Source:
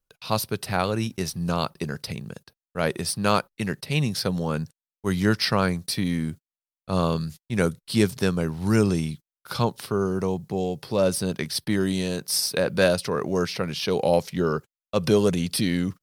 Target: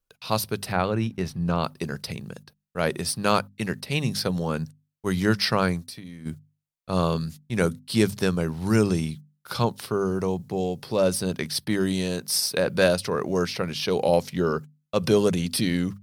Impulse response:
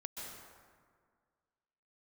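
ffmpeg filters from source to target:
-filter_complex "[0:a]asettb=1/sr,asplit=3[link_01][link_02][link_03];[link_01]atrim=end=0.724[link_04];[link_02]atrim=start=0.72:end=1.64,asetpts=PTS-STARTPTS,afade=type=in:duration=0.004:curve=qsin,afade=type=out:start_time=0.916:duration=0.004:curve=qsin,bass=frequency=250:gain=2,treble=frequency=4000:gain=-13[link_05];[link_03]atrim=start=1.636[link_06];[link_04][link_05]acrossfade=duration=0.004:curve1=hsin:curve2=qsin[link_07];[link_07][link_06]acrossfade=duration=0.004:curve1=qsin:curve2=hsin,asplit=3[link_08][link_09][link_10];[link_08]afade=type=out:start_time=5.83:duration=0.02[link_11];[link_09]acompressor=threshold=-36dB:ratio=16,afade=type=in:start_time=5.83:duration=0.02,afade=type=out:start_time=6.25:duration=0.02[link_12];[link_10]afade=type=in:start_time=6.25:duration=0.02[link_13];[link_11][link_12][link_13]amix=inputs=3:normalize=0,bandreject=frequency=50:width_type=h:width=6,bandreject=frequency=100:width_type=h:width=6,bandreject=frequency=150:width_type=h:width=6,bandreject=frequency=200:width_type=h:width=6,bandreject=frequency=250:width_type=h:width=6"

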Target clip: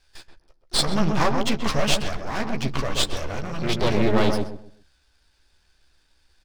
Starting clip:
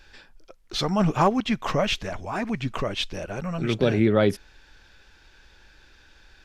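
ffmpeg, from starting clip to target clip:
ffmpeg -i in.wav -filter_complex "[0:a]asplit=2[link_01][link_02];[link_02]asoftclip=type=hard:threshold=-22dB,volume=-5.5dB[link_03];[link_01][link_03]amix=inputs=2:normalize=0,lowpass=frequency=4900:width_type=q:width=3.7,asplit=2[link_04][link_05];[link_05]adelay=14,volume=-6.5dB[link_06];[link_04][link_06]amix=inputs=2:normalize=0,acrossover=split=100[link_07][link_08];[link_08]aeval=exprs='max(val(0),0)':channel_layout=same[link_09];[link_07][link_09]amix=inputs=2:normalize=0,agate=range=-15dB:threshold=-39dB:ratio=16:detection=peak,asplit=2[link_10][link_11];[link_11]adelay=130,lowpass=frequency=940:poles=1,volume=-3dB,asplit=2[link_12][link_13];[link_13]adelay=130,lowpass=frequency=940:poles=1,volume=0.3,asplit=2[link_14][link_15];[link_15]adelay=130,lowpass=frequency=940:poles=1,volume=0.3,asplit=2[link_16][link_17];[link_17]adelay=130,lowpass=frequency=940:poles=1,volume=0.3[link_18];[link_10][link_12][link_14][link_16][link_18]amix=inputs=5:normalize=0" out.wav

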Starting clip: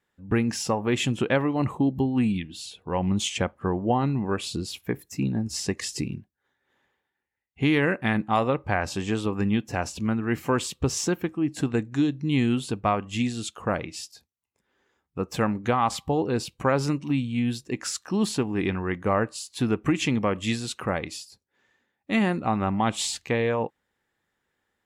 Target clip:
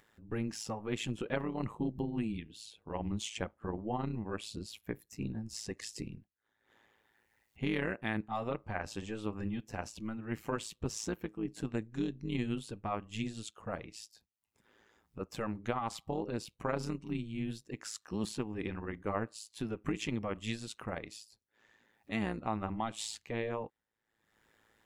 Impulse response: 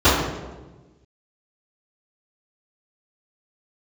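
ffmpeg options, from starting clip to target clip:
-af "acompressor=mode=upward:threshold=-41dB:ratio=2.5,tremolo=f=110:d=0.788,volume=-8.5dB"

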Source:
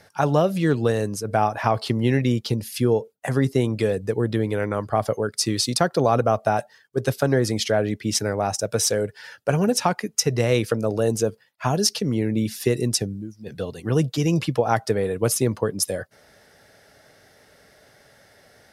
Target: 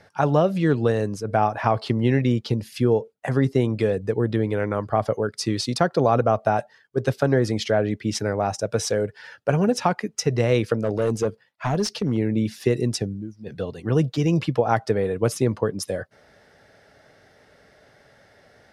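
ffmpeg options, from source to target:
ffmpeg -i in.wav -filter_complex "[0:a]asettb=1/sr,asplit=3[link_01][link_02][link_03];[link_01]atrim=end=10.834[link_04];[link_02]atrim=start=10.83:end=12.17,asetpts=PTS-STARTPTS,afade=type=in:duration=0.004:curve=qsin,afade=type=out:start_time=1.336:duration=0.004:curve=qsin,asoftclip=type=hard:threshold=-16.5dB[link_05];[link_03]atrim=start=12.166[link_06];[link_04][link_05]acrossfade=duration=0.004:curve1=hsin:curve2=qsin[link_07];[link_07][link_06]acrossfade=duration=0.004:curve1=qsin:curve2=hsin,aemphasis=mode=reproduction:type=50fm" out.wav

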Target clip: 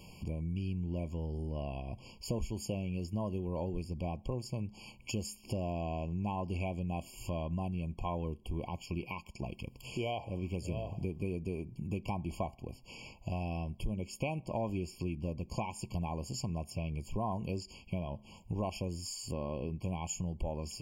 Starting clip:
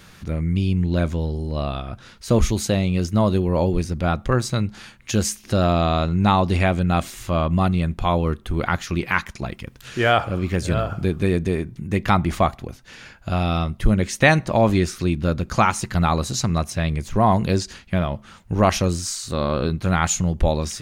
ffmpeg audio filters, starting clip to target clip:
ffmpeg -i in.wav -af "acompressor=threshold=-32dB:ratio=3,afftfilt=real='re*eq(mod(floor(b*sr/1024/1100),2),0)':imag='im*eq(mod(floor(b*sr/1024/1100),2),0)':win_size=1024:overlap=0.75,volume=-4.5dB" out.wav

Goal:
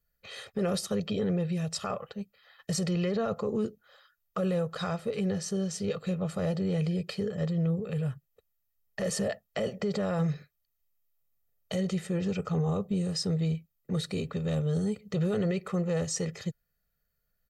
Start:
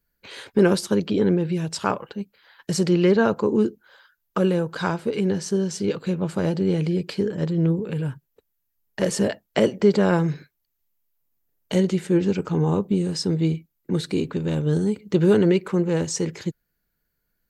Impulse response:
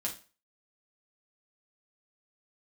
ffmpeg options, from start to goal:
-af "aecho=1:1:1.6:0.8,alimiter=limit=-15.5dB:level=0:latency=1:release=10,volume=-6.5dB"

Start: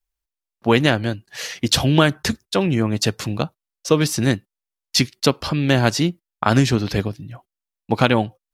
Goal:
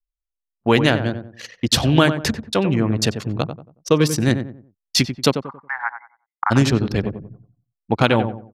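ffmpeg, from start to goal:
ffmpeg -i in.wav -filter_complex "[0:a]asplit=3[link_01][link_02][link_03];[link_01]afade=type=out:start_time=5.35:duration=0.02[link_04];[link_02]asuperpass=centerf=1300:order=20:qfactor=0.94,afade=type=in:start_time=5.35:duration=0.02,afade=type=out:start_time=6.5:duration=0.02[link_05];[link_03]afade=type=in:start_time=6.5:duration=0.02[link_06];[link_04][link_05][link_06]amix=inputs=3:normalize=0,anlmdn=251,asplit=2[link_07][link_08];[link_08]adelay=92,lowpass=frequency=1200:poles=1,volume=-8dB,asplit=2[link_09][link_10];[link_10]adelay=92,lowpass=frequency=1200:poles=1,volume=0.34,asplit=2[link_11][link_12];[link_12]adelay=92,lowpass=frequency=1200:poles=1,volume=0.34,asplit=2[link_13][link_14];[link_14]adelay=92,lowpass=frequency=1200:poles=1,volume=0.34[link_15];[link_07][link_09][link_11][link_13][link_15]amix=inputs=5:normalize=0" out.wav

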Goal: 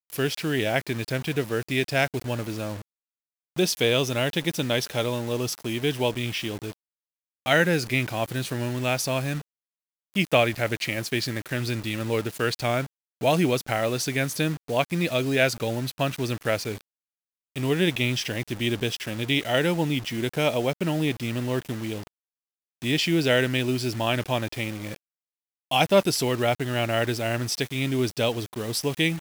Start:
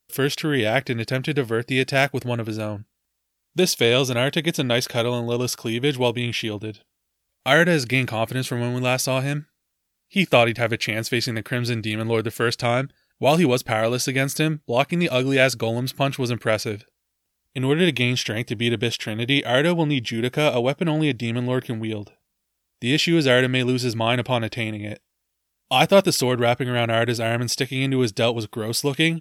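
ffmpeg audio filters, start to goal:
ffmpeg -i in.wav -af "acrusher=bits=5:mix=0:aa=0.000001,volume=-4dB" out.wav

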